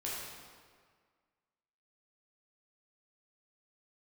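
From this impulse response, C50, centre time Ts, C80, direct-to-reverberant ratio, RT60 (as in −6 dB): −1.5 dB, 105 ms, 1.0 dB, −6.5 dB, 1.8 s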